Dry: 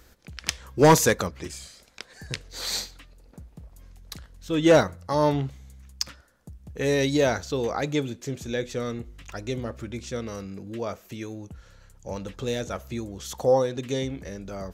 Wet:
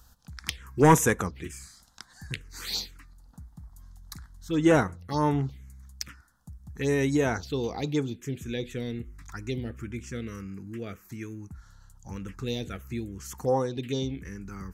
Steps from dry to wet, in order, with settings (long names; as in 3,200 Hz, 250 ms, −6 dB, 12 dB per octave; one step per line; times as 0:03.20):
parametric band 580 Hz −11.5 dB 0.38 octaves
phaser swept by the level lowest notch 350 Hz, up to 4,500 Hz, full sweep at −21 dBFS